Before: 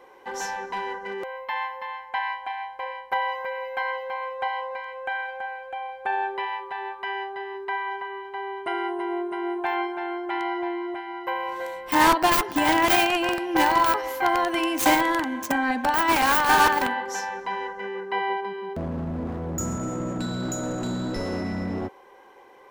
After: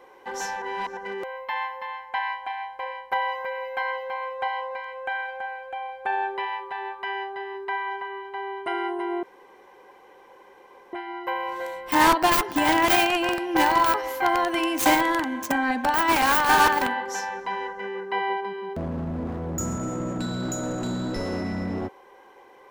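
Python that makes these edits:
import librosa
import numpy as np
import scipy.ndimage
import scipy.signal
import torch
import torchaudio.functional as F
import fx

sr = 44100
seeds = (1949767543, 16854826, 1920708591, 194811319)

y = fx.edit(x, sr, fx.reverse_span(start_s=0.62, length_s=0.35),
    fx.room_tone_fill(start_s=9.23, length_s=1.7), tone=tone)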